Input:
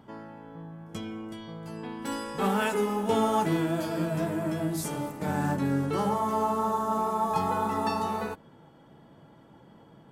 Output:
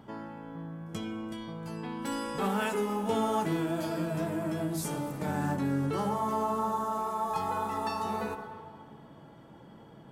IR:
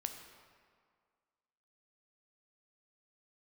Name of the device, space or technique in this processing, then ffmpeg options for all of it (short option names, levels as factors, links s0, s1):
ducked reverb: -filter_complex "[0:a]asplit=3[s0][s1][s2];[1:a]atrim=start_sample=2205[s3];[s1][s3]afir=irnorm=-1:irlink=0[s4];[s2]apad=whole_len=445996[s5];[s4][s5]sidechaincompress=threshold=0.0158:ratio=8:attack=16:release=156,volume=1.78[s6];[s0][s6]amix=inputs=2:normalize=0,asettb=1/sr,asplit=3[s7][s8][s9];[s7]atrim=end=6.844[s10];[s8]atrim=start=6.84:end=8.05,asetpts=PTS-STARTPTS,afade=t=in:d=0.004:c=qsin,afade=t=out:st=1.206:d=0.004:c=qsin,equalizer=f=200:w=0.61:g=-6[s11];[s9]atrim=start=8.046[s12];[s10][s11]acrossfade=d=0.004:c1=hsin:c2=qsin[s13];[s13][s12]acrossfade=d=0.004:c1=qsin:c2=hsin,volume=0.501"